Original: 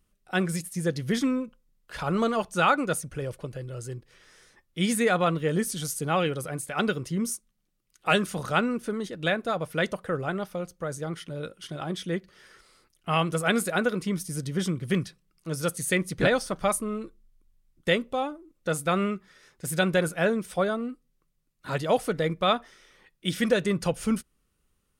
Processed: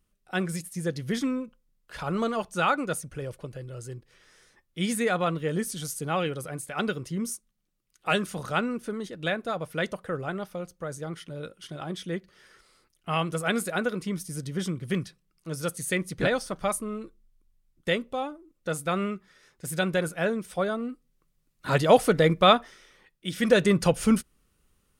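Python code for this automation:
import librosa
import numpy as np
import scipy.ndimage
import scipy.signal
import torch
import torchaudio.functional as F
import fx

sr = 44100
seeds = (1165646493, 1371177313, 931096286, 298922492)

y = fx.gain(x, sr, db=fx.line((20.53, -2.5), (21.77, 6.0), (22.46, 6.0), (23.3, -4.5), (23.57, 4.5)))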